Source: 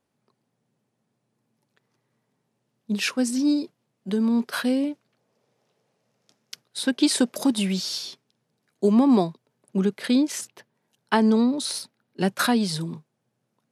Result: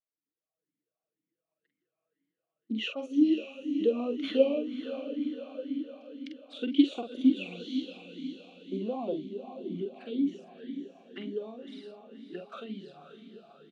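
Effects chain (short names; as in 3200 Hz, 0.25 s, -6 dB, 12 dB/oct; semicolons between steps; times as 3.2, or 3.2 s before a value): Doppler pass-by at 4.96, 24 m/s, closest 20 m; dynamic EQ 1800 Hz, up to +5 dB, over -51 dBFS, Q 0.78; AGC gain up to 13 dB; envelope flanger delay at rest 6.3 ms, full sweep at -25.5 dBFS; air absorption 64 m; doubler 46 ms -5.5 dB; diffused feedback echo 0.566 s, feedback 54%, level -9 dB; vowel sweep a-i 2 Hz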